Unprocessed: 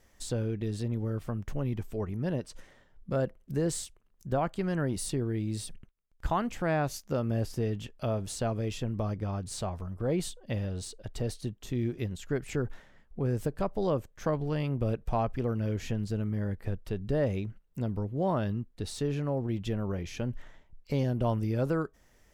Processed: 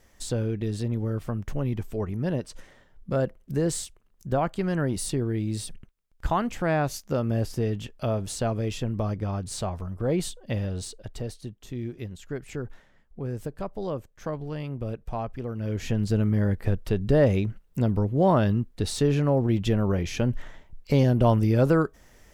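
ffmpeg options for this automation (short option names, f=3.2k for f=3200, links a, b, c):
-af "volume=15dB,afade=t=out:st=10.84:d=0.49:silence=0.473151,afade=t=in:st=15.54:d=0.61:silence=0.281838"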